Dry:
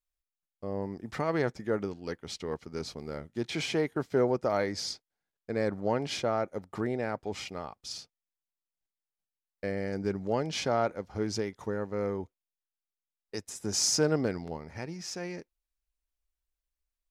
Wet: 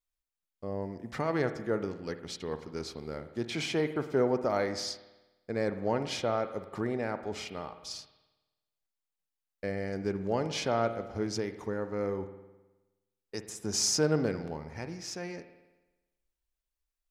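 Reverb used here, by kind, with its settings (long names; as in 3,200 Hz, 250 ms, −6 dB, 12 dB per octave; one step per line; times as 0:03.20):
spring reverb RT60 1.1 s, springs 52 ms, chirp 35 ms, DRR 10 dB
level −1 dB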